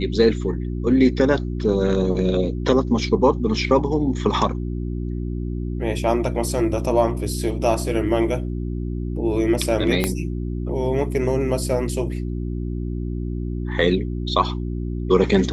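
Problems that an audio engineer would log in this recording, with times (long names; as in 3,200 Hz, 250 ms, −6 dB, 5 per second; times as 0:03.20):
mains hum 60 Hz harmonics 6 −26 dBFS
0:10.04: click −5 dBFS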